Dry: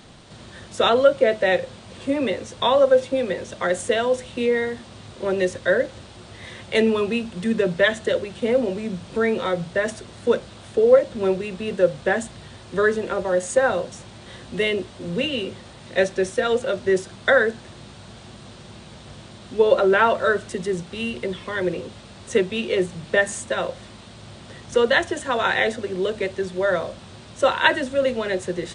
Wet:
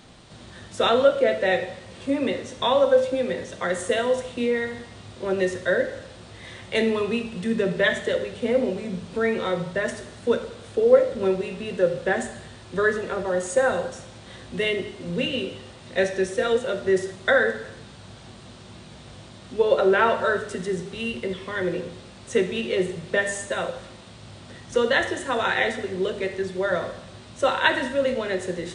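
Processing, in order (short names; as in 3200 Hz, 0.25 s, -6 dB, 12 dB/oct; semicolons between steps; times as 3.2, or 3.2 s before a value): plate-style reverb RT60 0.8 s, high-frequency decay 1×, DRR 6 dB; gain -3 dB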